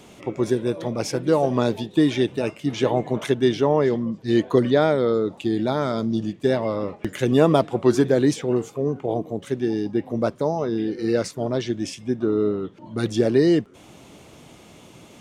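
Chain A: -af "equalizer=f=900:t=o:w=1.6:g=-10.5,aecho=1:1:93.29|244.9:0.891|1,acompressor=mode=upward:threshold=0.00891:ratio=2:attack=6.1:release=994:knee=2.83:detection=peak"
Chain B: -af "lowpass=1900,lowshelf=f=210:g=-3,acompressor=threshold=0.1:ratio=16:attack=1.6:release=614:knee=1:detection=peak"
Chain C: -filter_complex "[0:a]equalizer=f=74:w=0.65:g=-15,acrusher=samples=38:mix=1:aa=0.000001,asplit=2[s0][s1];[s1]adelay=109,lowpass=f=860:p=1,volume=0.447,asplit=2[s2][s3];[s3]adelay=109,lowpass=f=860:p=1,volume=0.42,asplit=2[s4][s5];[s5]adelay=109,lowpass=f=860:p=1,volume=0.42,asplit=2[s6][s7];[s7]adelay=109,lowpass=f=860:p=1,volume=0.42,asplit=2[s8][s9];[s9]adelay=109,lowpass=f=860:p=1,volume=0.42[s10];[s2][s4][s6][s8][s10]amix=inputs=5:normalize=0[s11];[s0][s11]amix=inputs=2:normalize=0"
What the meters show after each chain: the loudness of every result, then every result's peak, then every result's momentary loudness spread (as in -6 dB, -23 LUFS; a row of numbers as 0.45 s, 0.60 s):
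-21.0 LUFS, -29.5 LUFS, -23.5 LUFS; -3.0 dBFS, -15.5 dBFS, -6.0 dBFS; 7 LU, 6 LU, 9 LU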